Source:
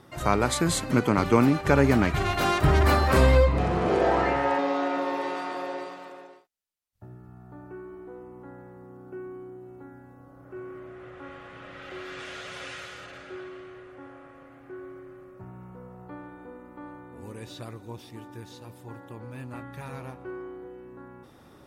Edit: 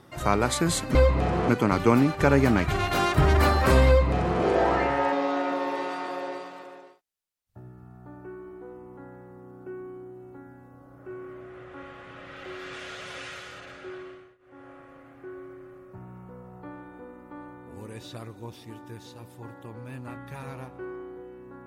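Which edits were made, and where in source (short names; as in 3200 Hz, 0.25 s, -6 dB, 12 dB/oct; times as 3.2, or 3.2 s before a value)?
3.33–3.87 copy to 0.95
13.52–14.16 dip -23.5 dB, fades 0.32 s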